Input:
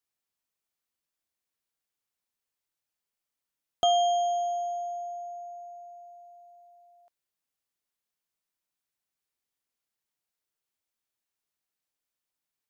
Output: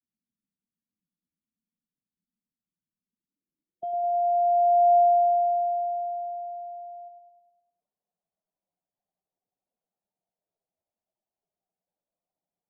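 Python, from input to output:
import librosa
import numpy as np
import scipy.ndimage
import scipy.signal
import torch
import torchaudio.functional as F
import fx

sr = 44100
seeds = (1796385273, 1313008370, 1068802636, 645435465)

p1 = fx.spec_expand(x, sr, power=1.9)
p2 = p1 + fx.echo_feedback(p1, sr, ms=103, feedback_pct=58, wet_db=-7.0, dry=0)
p3 = fx.filter_sweep_lowpass(p2, sr, from_hz=240.0, to_hz=680.0, start_s=3.0, end_s=4.97, q=4.0)
p4 = fx.peak_eq(p3, sr, hz=180.0, db=11.0, octaves=0.43)
y = F.gain(torch.from_numpy(p4), -1.5).numpy()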